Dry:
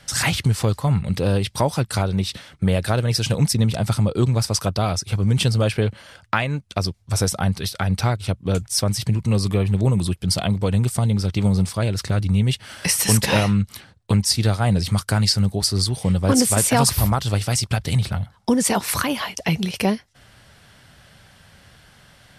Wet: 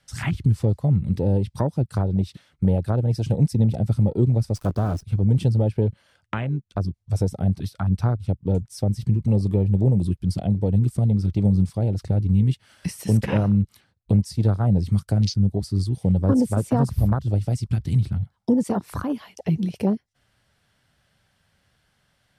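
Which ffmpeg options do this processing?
-filter_complex "[0:a]asettb=1/sr,asplit=3[a][b][c];[a]atrim=end=4.554[d];[b]atrim=start=4.55:end=5.03,asetpts=PTS-STARTPTS,afade=t=in:d=0.004:c=qsin,afade=t=out:st=0.476:d=0.004:c=qsin,acrusher=bits=5:dc=4:mix=0:aa=0.000001[e];[c]atrim=start=5.026[f];[d][e]acrossfade=d=0.004:c1=hsin:c2=qsin[g];[g][f]acrossfade=d=0.004:c1=qsin:c2=hsin,afwtdn=0.0794,acrossover=split=470[h][i];[i]acompressor=threshold=-37dB:ratio=2[j];[h][j]amix=inputs=2:normalize=0"

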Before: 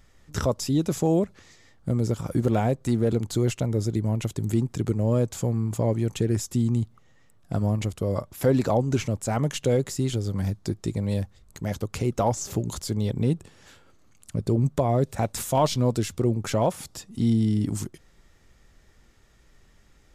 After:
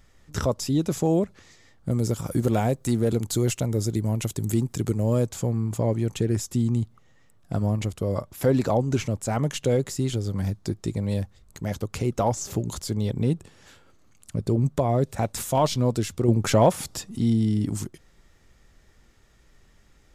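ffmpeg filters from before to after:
-filter_complex "[0:a]asettb=1/sr,asplit=3[a][b][c];[a]atrim=end=1.914[d];[b]atrim=start=1.91:end=5.28,asetpts=PTS-STARTPTS,afade=t=in:d=0.004:c=qsin,afade=t=out:st=3.366:d=0.004:c=qsin,highshelf=f=6.2k:g=10.5[e];[c]atrim=start=5.276[f];[d][e]acrossfade=d=0.004:c1=hsin:c2=qsin[g];[g][f]acrossfade=d=0.004:c1=qsin:c2=hsin,asettb=1/sr,asplit=3[h][i][j];[h]atrim=end=16.284[k];[i]atrim=start=16.28:end=17.18,asetpts=PTS-STARTPTS,afade=t=in:d=0.004:c=qsin,afade=t=out:st=0.896:d=0.004:c=qsin,acontrast=40[l];[j]atrim=start=17.176[m];[k][l]acrossfade=d=0.004:c1=hsin:c2=qsin[n];[n][m]acrossfade=d=0.004:c1=qsin:c2=hsin"

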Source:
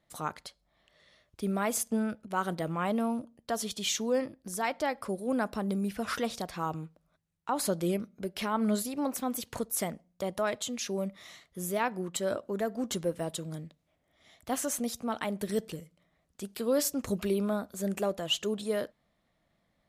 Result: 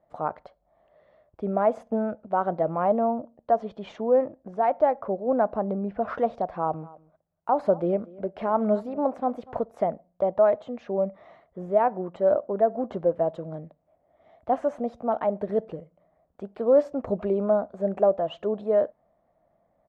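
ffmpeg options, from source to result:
-filter_complex "[0:a]asettb=1/sr,asplit=3[a][b][c];[a]atrim=end=2.904[d];[b]atrim=start=2.9:end=5.99,asetpts=PTS-STARTPTS,afade=t=in:d=0.004:c=qsin,afade=t=out:st=3.086:d=0.004:c=qsin,adynamicsmooth=sensitivity=5.5:basefreq=4.4k[e];[c]atrim=start=5.986[f];[d][e]acrossfade=d=0.004:c1=hsin:c2=qsin[g];[g][f]acrossfade=d=0.004:c1=qsin:c2=hsin,asplit=3[h][i][j];[h]afade=t=out:st=6.8:d=0.02[k];[i]aecho=1:1:240:0.0841,afade=t=in:st=6.8:d=0.02,afade=t=out:st=9.61:d=0.02[l];[j]afade=t=in:st=9.61:d=0.02[m];[k][l][m]amix=inputs=3:normalize=0,asettb=1/sr,asplit=3[n][o][p];[n]atrim=end=10.354[q];[o]atrim=start=10.35:end=13.03,asetpts=PTS-STARTPTS,afade=t=in:d=0.004:c=qsin,afade=t=out:st=2.676:d=0.004:c=qsin,highshelf=f=7.5k:g=-10.5[r];[p]atrim=start=13.026[s];[q][r]acrossfade=d=0.004:c1=hsin:c2=qsin[t];[t][s]acrossfade=d=0.004:c1=qsin:c2=hsin,lowpass=1.3k,equalizer=f=660:t=o:w=1.1:g=13.5"

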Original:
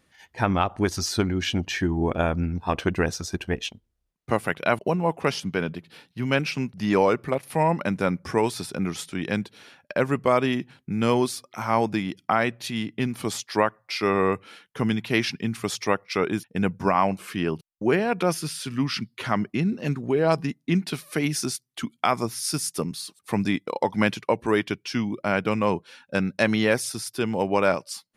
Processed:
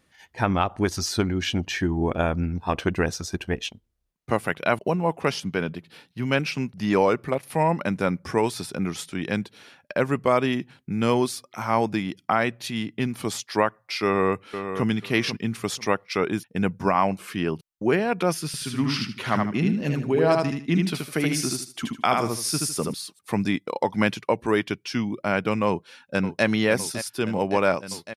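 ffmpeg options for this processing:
-filter_complex "[0:a]asplit=2[a][b];[b]afade=t=in:st=14.04:d=0.01,afade=t=out:st=14.87:d=0.01,aecho=0:1:490|980|1470:0.354813|0.0709627|0.0141925[c];[a][c]amix=inputs=2:normalize=0,asettb=1/sr,asplit=3[d][e][f];[d]atrim=end=18.464[g];[e]atrim=start=18.46:end=22.94,asetpts=PTS-STARTPTS,afade=t=in:d=0.004:c=qsin,afade=t=out:st=4.476:d=0.004:c=qsin,aecho=1:1:77|154|231|308:0.708|0.177|0.0442|0.0111,atrim=end_sample=197568[h];[f]atrim=start=22.936[i];[g][h]acrossfade=d=0.004:c1=hsin:c2=qsin[j];[j][i]acrossfade=d=0.004:c1=qsin:c2=hsin,asplit=2[k][l];[l]afade=t=in:st=25.67:d=0.01,afade=t=out:st=26.45:d=0.01,aecho=0:1:560|1120|1680|2240|2800|3360|3920|4480|5040|5600|6160|6720:0.266073|0.212858|0.170286|0.136229|0.108983|0.0871866|0.0697493|0.0557994|0.0446396|0.0357116|0.0285693|0.0228555[m];[k][m]amix=inputs=2:normalize=0"

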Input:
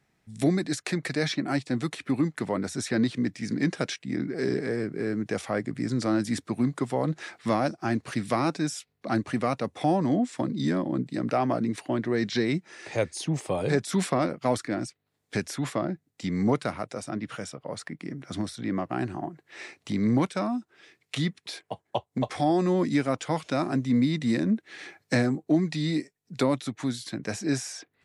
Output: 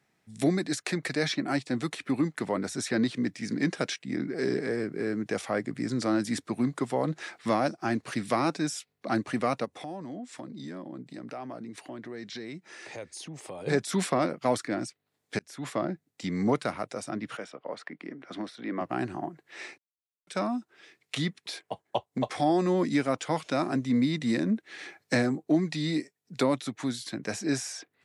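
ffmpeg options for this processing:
-filter_complex "[0:a]asplit=3[a][b][c];[a]afade=t=out:st=9.64:d=0.02[d];[b]acompressor=threshold=-41dB:ratio=2.5:attack=3.2:release=140:knee=1:detection=peak,afade=t=in:st=9.64:d=0.02,afade=t=out:st=13.66:d=0.02[e];[c]afade=t=in:st=13.66:d=0.02[f];[d][e][f]amix=inputs=3:normalize=0,asettb=1/sr,asplit=3[g][h][i];[g]atrim=end=17.374[j];[h]atrim=start=17.37:end=18.81,asetpts=PTS-STARTPTS,afade=t=in:d=0.004:c=qsin,afade=t=out:st=1.436:d=0.004:c=qsin,acrossover=split=220 3900:gain=0.126 1 0.158[k][l][m];[k][l][m]amix=inputs=3:normalize=0[n];[i]atrim=start=18.806[o];[j][n]acrossfade=d=0.004:c1=hsin:c2=qsin[p];[p][o]acrossfade=d=0.004:c1=qsin:c2=hsin,asplit=4[q][r][s][t];[q]atrim=end=15.39,asetpts=PTS-STARTPTS,afade=t=out:st=15.386:d=0.004:c=hsin[u];[r]atrim=start=15.39:end=19.78,asetpts=PTS-STARTPTS,afade=t=in:d=0.42,afade=t=out:st=4.386:d=0.004:c=hsin[v];[s]atrim=start=19.78:end=20.27,asetpts=PTS-STARTPTS,volume=0[w];[t]atrim=start=20.27,asetpts=PTS-STARTPTS,afade=t=in:d=0.004:c=hsin[x];[u][v][w][x]concat=n=4:v=0:a=1,highpass=f=180:p=1"

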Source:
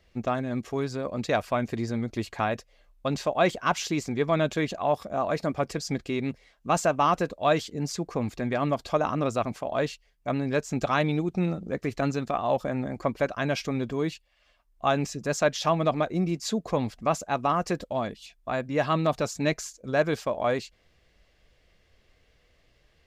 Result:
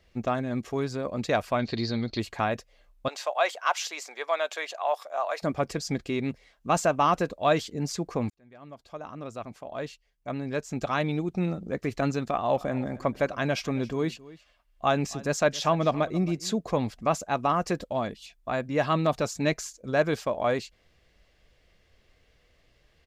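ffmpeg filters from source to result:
-filter_complex "[0:a]asettb=1/sr,asplit=3[a][b][c];[a]atrim=end=1.594[d];[b]atrim=start=1.59:end=2.2,asetpts=PTS-STARTPTS,afade=t=in:d=0.004:c=qsin,afade=t=out:st=0.606:d=0.004:c=qsin,lowpass=f=4.3k:t=q:w=11[e];[c]atrim=start=2.196[f];[d][e]acrossfade=d=0.004:c1=hsin:c2=qsin[g];[g][f]acrossfade=d=0.004:c1=qsin:c2=hsin,asettb=1/sr,asplit=3[h][i][j];[h]atrim=end=3.084[k];[i]atrim=start=3.08:end=5.42,asetpts=PTS-STARTPTS,afade=t=in:d=0.004:c=qsin,afade=t=out:st=2.336:d=0.004:c=qsin,highpass=f=600:w=0.5412,highpass=f=600:w=1.3066[l];[j]atrim=start=5.416[m];[k][l]acrossfade=d=0.004:c1=hsin:c2=qsin[n];[n][m]acrossfade=d=0.004:c1=qsin:c2=hsin,asplit=3[o][p][q];[o]afade=t=out:st=12.51:d=0.02[r];[p]aecho=1:1:272:0.106,afade=t=in:st=12.51:d=0.02,afade=t=out:st=16.55:d=0.02[s];[q]afade=t=in:st=16.55:d=0.02[t];[r][s][t]amix=inputs=3:normalize=0,asplit=2[u][v];[u]atrim=end=8.3,asetpts=PTS-STARTPTS,afade=t=out:st=8.296:d=0.004:c=hsin[w];[v]atrim=start=8.3,asetpts=PTS-STARTPTS,afade=t=in:d=3.66[x];[w][x]concat=n=2:v=0:a=1"

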